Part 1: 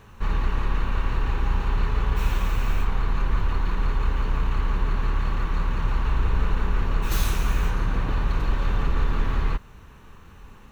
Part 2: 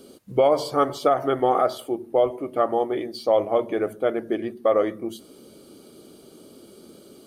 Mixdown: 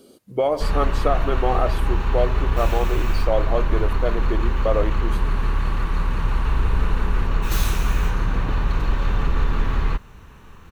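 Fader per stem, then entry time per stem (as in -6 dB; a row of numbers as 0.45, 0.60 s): +2.5, -2.5 dB; 0.40, 0.00 s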